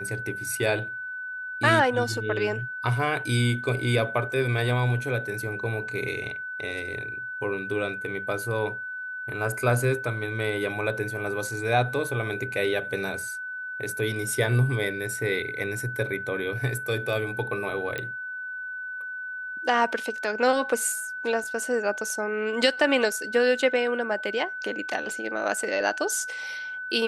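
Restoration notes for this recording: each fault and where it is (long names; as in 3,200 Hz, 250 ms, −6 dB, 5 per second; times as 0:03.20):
whistle 1,500 Hz −32 dBFS
0:17.98: click −17 dBFS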